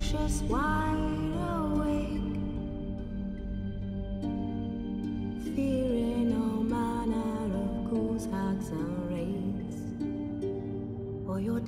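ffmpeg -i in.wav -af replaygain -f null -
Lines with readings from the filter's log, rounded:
track_gain = +13.7 dB
track_peak = 0.100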